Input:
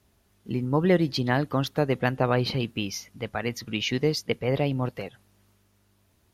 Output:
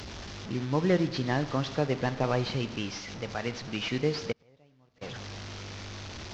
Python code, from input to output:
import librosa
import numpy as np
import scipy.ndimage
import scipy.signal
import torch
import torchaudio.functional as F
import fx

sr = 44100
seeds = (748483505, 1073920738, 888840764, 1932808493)

y = fx.delta_mod(x, sr, bps=32000, step_db=-31.0)
y = fx.rev_schroeder(y, sr, rt60_s=1.2, comb_ms=27, drr_db=12.0)
y = fx.gate_flip(y, sr, shuts_db=-27.0, range_db=-32, at=(4.31, 5.01), fade=0.02)
y = F.gain(torch.from_numpy(y), -4.0).numpy()